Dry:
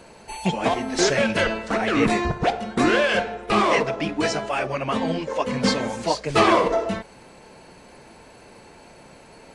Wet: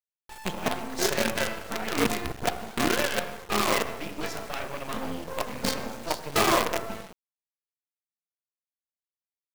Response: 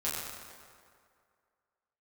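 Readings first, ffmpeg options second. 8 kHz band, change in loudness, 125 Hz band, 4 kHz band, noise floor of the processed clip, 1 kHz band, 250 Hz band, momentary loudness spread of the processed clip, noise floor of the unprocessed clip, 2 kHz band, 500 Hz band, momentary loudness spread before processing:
-0.5 dB, -6.5 dB, -8.5 dB, -3.5 dB, under -85 dBFS, -7.0 dB, -8.5 dB, 10 LU, -48 dBFS, -6.0 dB, -8.0 dB, 7 LU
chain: -filter_complex "[0:a]asplit=2[a][b];[1:a]atrim=start_sample=2205,afade=t=out:st=0.31:d=0.01,atrim=end_sample=14112[c];[b][c]afir=irnorm=-1:irlink=0,volume=-8.5dB[d];[a][d]amix=inputs=2:normalize=0,anlmdn=15.8,acrusher=bits=3:dc=4:mix=0:aa=0.000001,volume=-8.5dB"

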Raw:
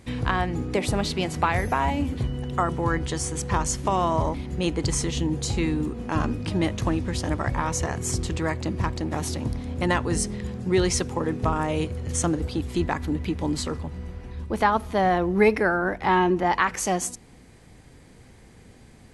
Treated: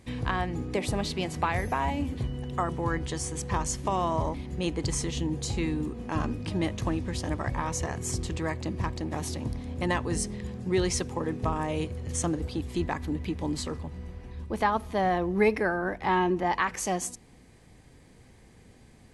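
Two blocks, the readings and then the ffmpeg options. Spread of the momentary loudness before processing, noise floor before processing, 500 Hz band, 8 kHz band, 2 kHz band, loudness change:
7 LU, -50 dBFS, -4.5 dB, -4.5 dB, -5.0 dB, -4.5 dB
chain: -af "bandreject=f=1.4k:w=13,volume=-4.5dB"

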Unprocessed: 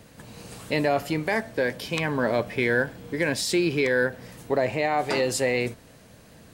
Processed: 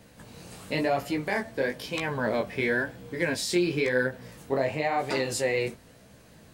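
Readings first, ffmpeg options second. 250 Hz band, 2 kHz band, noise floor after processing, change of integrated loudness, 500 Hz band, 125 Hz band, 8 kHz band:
-2.5 dB, -3.0 dB, -54 dBFS, -3.0 dB, -3.0 dB, -3.5 dB, -3.0 dB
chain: -af "flanger=delay=15:depth=7.5:speed=0.98"

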